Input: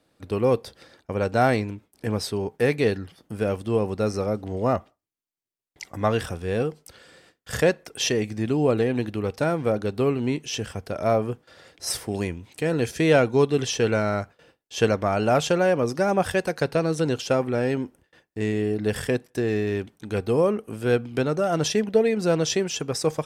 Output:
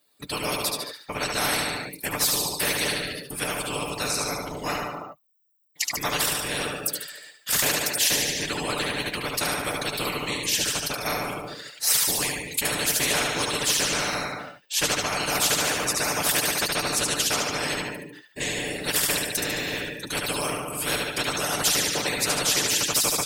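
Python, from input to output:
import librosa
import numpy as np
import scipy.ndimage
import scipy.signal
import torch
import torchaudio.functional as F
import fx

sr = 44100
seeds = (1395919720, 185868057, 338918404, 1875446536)

y = fx.bin_expand(x, sr, power=1.5)
y = fx.high_shelf(y, sr, hz=4000.0, db=10.0)
y = fx.echo_feedback(y, sr, ms=73, feedback_pct=43, wet_db=-6.5)
y = fx.whisperise(y, sr, seeds[0])
y = fx.highpass(y, sr, hz=620.0, slope=6)
y = y + 0.51 * np.pad(y, (int(6.8 * sr / 1000.0), 0))[:len(y)]
y = fx.spectral_comp(y, sr, ratio=4.0)
y = F.gain(torch.from_numpy(y), -1.5).numpy()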